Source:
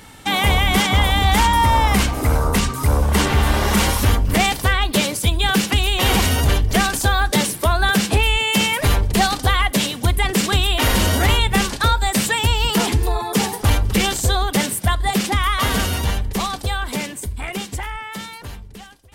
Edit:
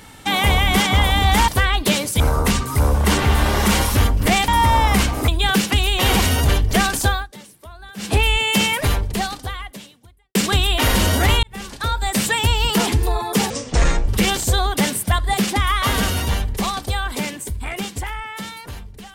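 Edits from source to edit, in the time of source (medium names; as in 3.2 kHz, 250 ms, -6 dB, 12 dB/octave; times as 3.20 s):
1.48–2.28 s: swap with 4.56–5.28 s
7.07–8.16 s: dip -22.5 dB, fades 0.20 s
8.70–10.35 s: fade out quadratic
11.43–12.28 s: fade in
13.50–13.84 s: speed 59%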